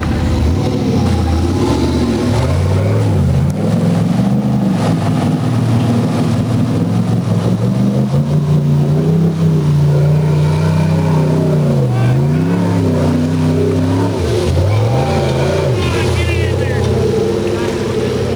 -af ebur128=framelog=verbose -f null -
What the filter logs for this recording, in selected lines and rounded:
Integrated loudness:
  I:         -13.8 LUFS
  Threshold: -23.8 LUFS
Loudness range:
  LRA:         1.6 LU
  Threshold: -33.6 LUFS
  LRA low:   -14.2 LUFS
  LRA high:  -12.6 LUFS